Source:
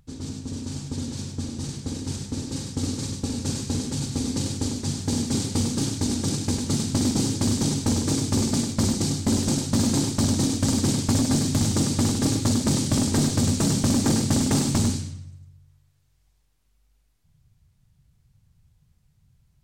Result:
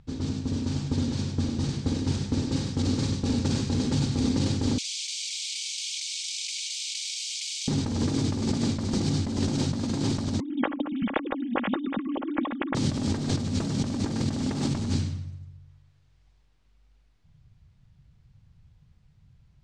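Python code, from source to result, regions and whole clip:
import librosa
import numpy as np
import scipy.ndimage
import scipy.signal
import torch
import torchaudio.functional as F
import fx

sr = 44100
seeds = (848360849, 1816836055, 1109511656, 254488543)

y = fx.chain(x, sr, fx.cheby_ripple_highpass(hz=2200.0, ripple_db=3),
    fx.env_flatten(amount_pct=100), at=(4.78, 7.68))
y = fx.chain(y, sr, fx.sine_speech(),
    fx.comb(ms=3.6, depth=0.49), at=(10.4, 12.75))
y = scipy.signal.sosfilt(scipy.signal.butter(2, 4300.0, 'lowpass', fs=sr, output='sos'), y)
y = fx.over_compress(y, sr, threshold_db=-27.0, ratio=-1.0)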